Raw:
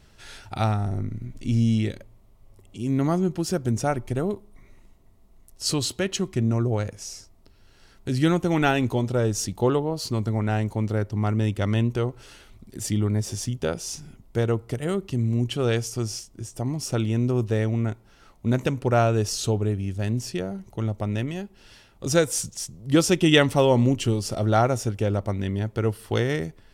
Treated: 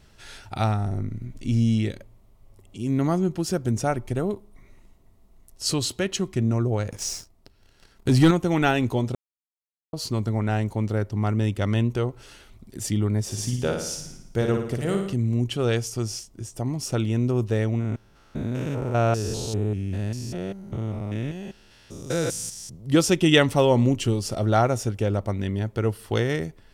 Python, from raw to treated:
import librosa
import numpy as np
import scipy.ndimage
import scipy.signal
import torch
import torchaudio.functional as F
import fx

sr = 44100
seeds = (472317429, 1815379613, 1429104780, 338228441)

y = fx.leveller(x, sr, passes=2, at=(6.9, 8.31))
y = fx.room_flutter(y, sr, wall_m=9.7, rt60_s=0.68, at=(13.25, 15.14))
y = fx.spec_steps(y, sr, hold_ms=200, at=(17.79, 22.75), fade=0.02)
y = fx.edit(y, sr, fx.silence(start_s=9.15, length_s=0.78), tone=tone)